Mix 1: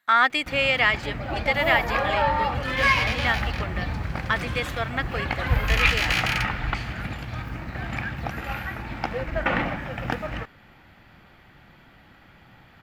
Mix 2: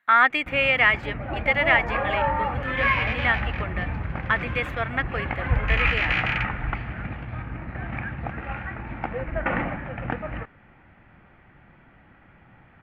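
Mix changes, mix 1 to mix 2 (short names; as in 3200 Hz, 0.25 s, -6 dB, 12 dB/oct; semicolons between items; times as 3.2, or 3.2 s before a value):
first sound: add tape spacing loss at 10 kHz 25 dB; second sound: add air absorption 110 m; master: add resonant high shelf 3400 Hz -11.5 dB, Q 1.5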